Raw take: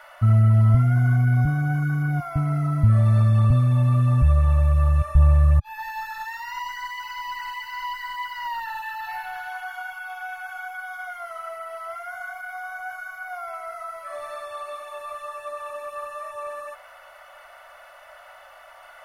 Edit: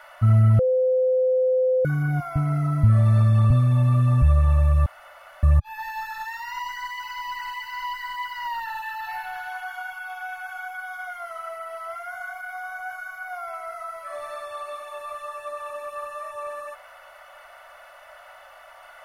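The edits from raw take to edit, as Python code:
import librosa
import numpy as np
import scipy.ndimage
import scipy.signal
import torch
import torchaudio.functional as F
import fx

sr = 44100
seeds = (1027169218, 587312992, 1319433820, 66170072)

y = fx.edit(x, sr, fx.bleep(start_s=0.59, length_s=1.26, hz=513.0, db=-17.0),
    fx.room_tone_fill(start_s=4.86, length_s=0.57), tone=tone)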